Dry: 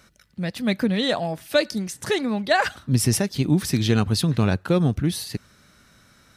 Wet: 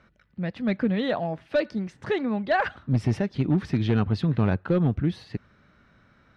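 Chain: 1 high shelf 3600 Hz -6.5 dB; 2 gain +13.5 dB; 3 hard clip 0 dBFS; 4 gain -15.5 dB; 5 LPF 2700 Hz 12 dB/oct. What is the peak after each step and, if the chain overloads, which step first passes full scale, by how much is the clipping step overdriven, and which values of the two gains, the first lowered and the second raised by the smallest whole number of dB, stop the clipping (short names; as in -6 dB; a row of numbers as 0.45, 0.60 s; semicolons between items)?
-6.5, +7.0, 0.0, -15.5, -15.0 dBFS; step 2, 7.0 dB; step 2 +6.5 dB, step 4 -8.5 dB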